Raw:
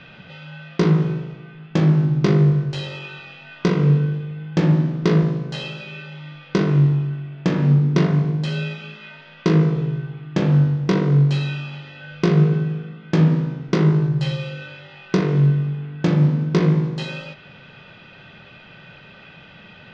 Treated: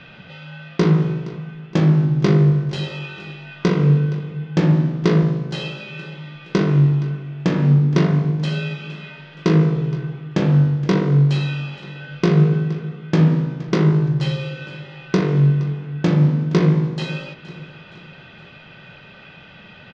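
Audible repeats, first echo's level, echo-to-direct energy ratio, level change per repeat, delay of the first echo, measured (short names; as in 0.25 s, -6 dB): 3, -18.0 dB, -17.0 dB, -6.5 dB, 0.469 s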